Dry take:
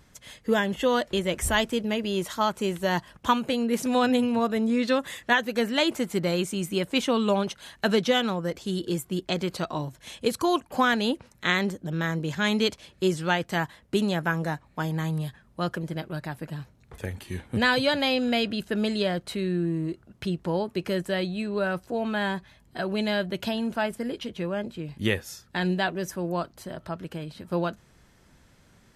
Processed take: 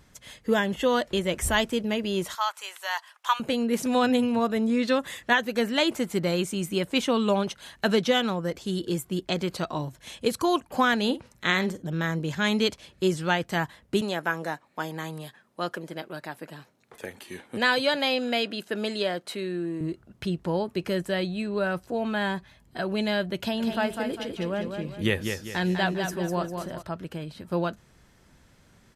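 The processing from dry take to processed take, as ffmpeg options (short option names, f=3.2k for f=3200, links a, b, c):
-filter_complex "[0:a]asettb=1/sr,asplit=3[a][b][c];[a]atrim=end=2.354[d];[b]atrim=start=2.35:end=3.4,asetpts=PTS-STARTPTS,afade=t=in:d=0.004:c=qsin,afade=t=out:st=1.046:d=0.004:c=qsin,highpass=f=860:w=0.5412,highpass=f=860:w=1.3066[e];[c]atrim=start=3.396[f];[d][e]acrossfade=d=0.004:c1=hsin:c2=qsin[g];[g][f]acrossfade=d=0.004:c1=qsin:c2=hsin,asettb=1/sr,asplit=3[h][i][j];[h]atrim=end=10.984[k];[i]atrim=start=10.98:end=11.88,asetpts=PTS-STARTPTS,afade=t=in:d=0.004:c=qsin,afade=t=out:st=0.896:d=0.004:c=qsin,asplit=2[l][m];[m]adelay=48,volume=-14dB[n];[l][n]amix=inputs=2:normalize=0,atrim=end_sample=39690[o];[j]atrim=start=11.876[p];[k][o]acrossfade=d=0.004:c1=hsin:c2=qsin[q];[q][p]acrossfade=d=0.004:c1=qsin:c2=hsin,asettb=1/sr,asplit=3[r][s][t];[r]atrim=end=14.014[u];[s]atrim=start=14.01:end=19.81,asetpts=PTS-STARTPTS,afade=t=in:d=0.004:c=qsin,afade=t=out:st=5.796:d=0.004:c=qsin,highpass=290[v];[t]atrim=start=19.806[w];[u][v]acrossfade=d=0.004:c1=hsin:c2=qsin[x];[x][w]acrossfade=d=0.004:c1=qsin:c2=hsin,asplit=3[y][z][aa];[y]afade=t=out:st=23.59:d=0.02[ab];[z]aecho=1:1:200|400|600|800|1000:0.501|0.195|0.0762|0.0297|0.0116,afade=t=in:st=23.59:d=0.02,afade=t=out:st=26.81:d=0.02[ac];[aa]afade=t=in:st=26.81:d=0.02[ad];[ab][ac][ad]amix=inputs=3:normalize=0"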